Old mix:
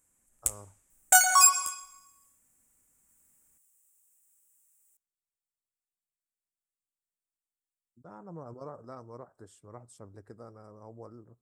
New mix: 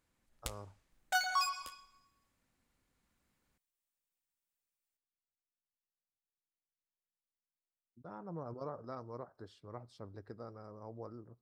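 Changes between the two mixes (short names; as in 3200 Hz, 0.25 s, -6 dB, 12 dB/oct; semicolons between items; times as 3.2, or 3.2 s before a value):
first sound: send -10.5 dB; second sound -10.5 dB; master: add resonant high shelf 5900 Hz -11.5 dB, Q 3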